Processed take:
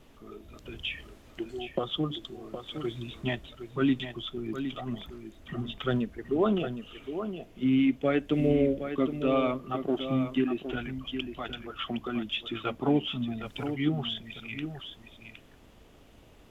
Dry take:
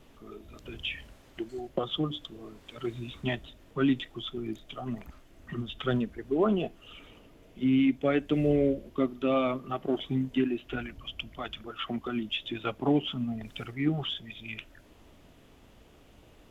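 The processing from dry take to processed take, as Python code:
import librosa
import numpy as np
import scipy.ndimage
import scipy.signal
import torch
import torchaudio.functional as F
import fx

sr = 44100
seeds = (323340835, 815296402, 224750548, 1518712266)

y = x + 10.0 ** (-9.0 / 20.0) * np.pad(x, (int(764 * sr / 1000.0), 0))[:len(x)]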